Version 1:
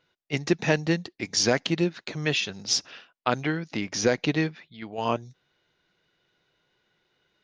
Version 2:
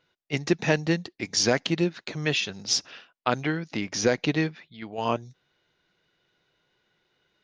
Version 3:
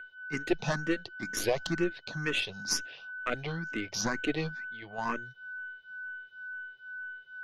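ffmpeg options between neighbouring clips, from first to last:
-af anull
-filter_complex "[0:a]aeval=exprs='val(0)+0.02*sin(2*PI*1500*n/s)':c=same,aeval=exprs='(tanh(5.01*val(0)+0.75)-tanh(0.75))/5.01':c=same,asplit=2[s0][s1];[s1]afreqshift=2.1[s2];[s0][s2]amix=inputs=2:normalize=1,volume=1.19"

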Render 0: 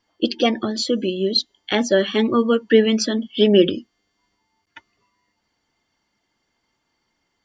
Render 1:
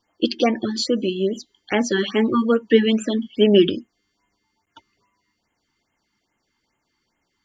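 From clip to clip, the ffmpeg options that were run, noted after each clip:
-af "afftfilt=real='re*(1-between(b*sr/1024,540*pow(4700/540,0.5+0.5*sin(2*PI*2.4*pts/sr))/1.41,540*pow(4700/540,0.5+0.5*sin(2*PI*2.4*pts/sr))*1.41))':imag='im*(1-between(b*sr/1024,540*pow(4700/540,0.5+0.5*sin(2*PI*2.4*pts/sr))/1.41,540*pow(4700/540,0.5+0.5*sin(2*PI*2.4*pts/sr))*1.41))':win_size=1024:overlap=0.75"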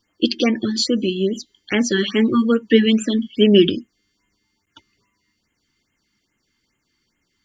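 -af "equalizer=f=770:t=o:w=1.2:g=-13,volume=1.68"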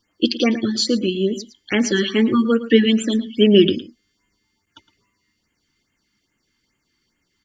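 -af "aecho=1:1:112:0.178"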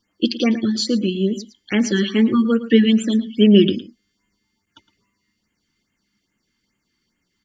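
-af "equalizer=f=200:t=o:w=0.43:g=6.5,volume=0.75"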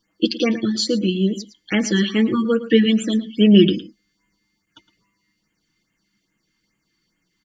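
-af "aecho=1:1:6.2:0.46"

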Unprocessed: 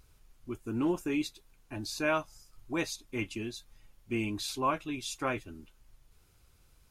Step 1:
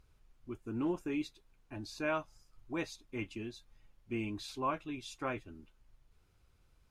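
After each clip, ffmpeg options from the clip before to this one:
-af "lowpass=f=3200:p=1,volume=0.596"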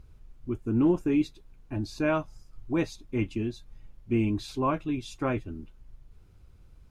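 -af "lowshelf=f=460:g=11.5,volume=1.5"

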